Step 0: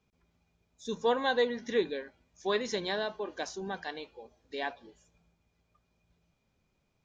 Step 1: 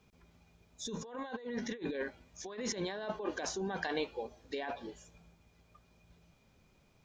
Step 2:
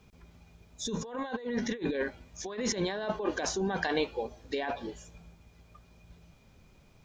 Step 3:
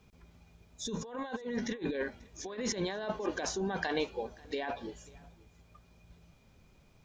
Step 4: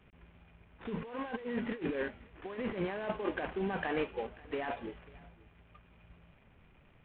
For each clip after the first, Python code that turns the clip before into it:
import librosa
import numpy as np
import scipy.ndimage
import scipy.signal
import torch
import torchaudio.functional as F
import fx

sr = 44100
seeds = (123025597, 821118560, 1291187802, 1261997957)

y1 = fx.dynamic_eq(x, sr, hz=4700.0, q=0.91, threshold_db=-50.0, ratio=4.0, max_db=-6)
y1 = fx.over_compress(y1, sr, threshold_db=-41.0, ratio=-1.0)
y1 = y1 * librosa.db_to_amplitude(1.5)
y2 = fx.low_shelf(y1, sr, hz=110.0, db=6.0)
y2 = y2 * librosa.db_to_amplitude(5.5)
y3 = y2 + 10.0 ** (-23.5 / 20.0) * np.pad(y2, (int(539 * sr / 1000.0), 0))[:len(y2)]
y3 = y3 * librosa.db_to_amplitude(-3.0)
y4 = fx.cvsd(y3, sr, bps=16000)